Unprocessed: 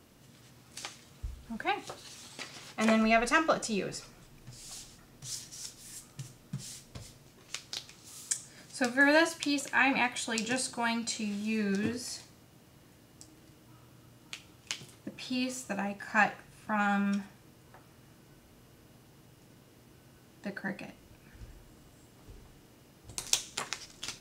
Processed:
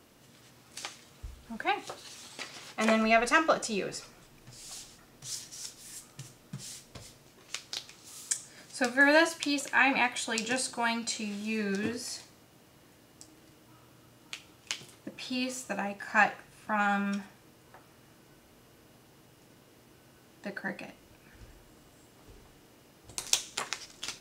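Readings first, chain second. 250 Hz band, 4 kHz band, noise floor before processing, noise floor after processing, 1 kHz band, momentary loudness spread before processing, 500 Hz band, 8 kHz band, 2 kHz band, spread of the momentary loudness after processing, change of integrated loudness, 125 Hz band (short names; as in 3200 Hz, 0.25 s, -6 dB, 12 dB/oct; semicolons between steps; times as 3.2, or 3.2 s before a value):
-1.0 dB, +1.5 dB, -59 dBFS, -59 dBFS, +2.0 dB, 21 LU, +1.5 dB, +1.0 dB, +2.0 dB, 21 LU, +1.5 dB, -2.5 dB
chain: tone controls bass -6 dB, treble -1 dB; gain +2 dB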